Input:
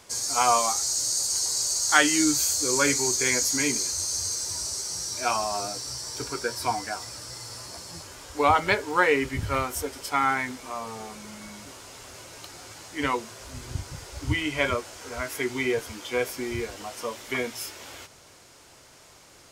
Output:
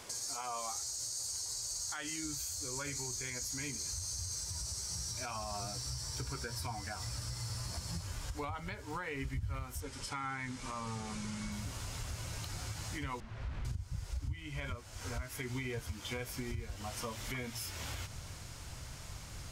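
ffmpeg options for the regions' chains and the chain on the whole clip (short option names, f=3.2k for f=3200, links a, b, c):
-filter_complex "[0:a]asettb=1/sr,asplit=3[a][b][c];[a]atrim=end=9.804[d];[b]atrim=start=9.8:end=11.52,asetpts=PTS-STARTPTS,afade=t=in:d=0.004:c=qsin,afade=t=out:st=1.716:d=0.004:c=qsin,lowpass=f=10k:w=0.5412,lowpass=f=10k:w=1.3066,equalizer=f=62:w=1.9:g=-13.5,bandreject=f=690:w=5.1[e];[c]atrim=start=11.516[f];[d][e]acrossfade=d=0.004:c1=hsin:c2=qsin[g];[g][f]acrossfade=d=0.004:c1=qsin:c2=hsin,asettb=1/sr,asplit=3[h][i][j];[h]atrim=end=13.204[k];[i]atrim=start=13.2:end=13.65,asetpts=PTS-STARTPTS,afade=t=in:d=0.004:c=qsin,afade=t=out:st=0.446:d=0.004:c=qsin,aeval=exprs='(mod(66.8*val(0)+1,2)-1)/66.8':c=same,lowpass=2.1k[l];[j]atrim=start=13.646[m];[k][l]acrossfade=d=0.004:c1=hsin:c2=qsin[n];[n][m]acrossfade=d=0.004:c1=qsin:c2=hsin,asubboost=boost=9.5:cutoff=120,acompressor=threshold=-39dB:ratio=4,alimiter=level_in=7.5dB:limit=-24dB:level=0:latency=1:release=74,volume=-7.5dB,volume=1.5dB"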